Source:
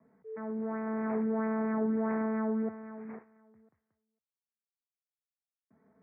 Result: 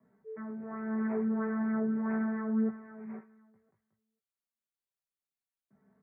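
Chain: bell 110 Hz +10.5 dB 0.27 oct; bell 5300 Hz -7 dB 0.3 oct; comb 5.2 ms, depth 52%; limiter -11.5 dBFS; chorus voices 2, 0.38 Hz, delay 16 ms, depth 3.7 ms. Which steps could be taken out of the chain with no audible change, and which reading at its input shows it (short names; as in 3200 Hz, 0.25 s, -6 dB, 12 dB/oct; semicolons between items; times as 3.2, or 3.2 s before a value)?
bell 5300 Hz: input band ends at 1400 Hz; limiter -11.5 dBFS: input peak -20.0 dBFS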